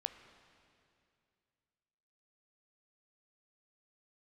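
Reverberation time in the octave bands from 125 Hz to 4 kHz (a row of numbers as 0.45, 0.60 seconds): 2.9, 2.7, 2.6, 2.4, 2.4, 2.4 seconds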